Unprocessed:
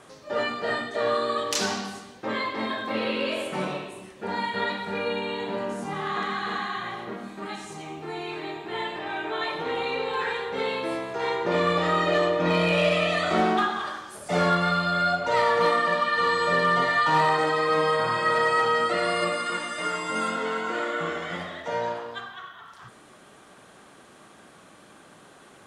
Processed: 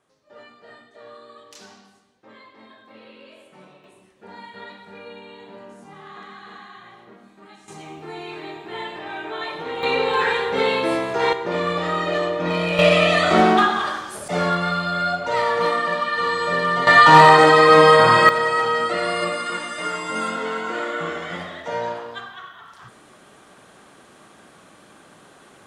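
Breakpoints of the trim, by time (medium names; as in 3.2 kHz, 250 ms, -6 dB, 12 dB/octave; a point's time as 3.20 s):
-18.5 dB
from 3.84 s -11.5 dB
from 7.68 s -0.5 dB
from 9.83 s +8 dB
from 11.33 s 0 dB
from 12.79 s +7.5 dB
from 14.28 s +1 dB
from 16.87 s +12 dB
from 18.29 s +2 dB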